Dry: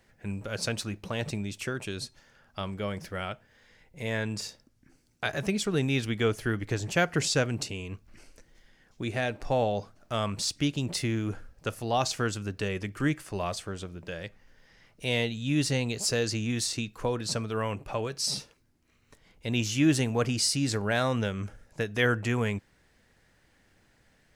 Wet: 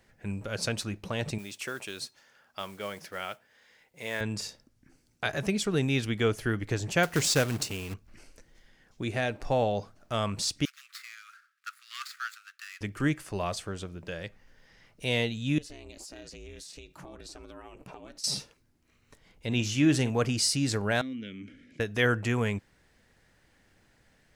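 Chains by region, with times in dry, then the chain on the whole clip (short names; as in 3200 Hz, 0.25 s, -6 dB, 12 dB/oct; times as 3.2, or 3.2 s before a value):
1.38–4.21 modulation noise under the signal 23 dB + HPF 550 Hz 6 dB/oct
7.03–7.94 high shelf 11000 Hz +11 dB + companded quantiser 4-bit
10.65–12.81 median filter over 15 samples + steep high-pass 1200 Hz 96 dB/oct
15.58–18.24 bell 100 Hz -15 dB 0.29 oct + compressor 12:1, threshold -39 dBFS + ring modulator 160 Hz
19.46–20.1 high shelf 10000 Hz -8.5 dB + doubler 48 ms -14 dB
21.01–21.8 vowel filter i + fast leveller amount 50%
whole clip: dry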